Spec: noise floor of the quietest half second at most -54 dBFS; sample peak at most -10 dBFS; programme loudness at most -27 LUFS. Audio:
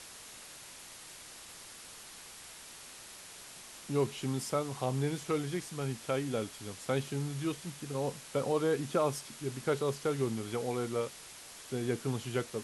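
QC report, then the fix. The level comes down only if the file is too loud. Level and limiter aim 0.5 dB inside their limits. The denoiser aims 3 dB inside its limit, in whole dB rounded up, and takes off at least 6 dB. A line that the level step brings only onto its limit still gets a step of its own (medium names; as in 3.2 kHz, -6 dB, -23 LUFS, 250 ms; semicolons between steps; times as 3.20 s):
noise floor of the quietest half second -50 dBFS: fail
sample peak -18.0 dBFS: pass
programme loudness -34.5 LUFS: pass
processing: noise reduction 7 dB, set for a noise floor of -50 dBFS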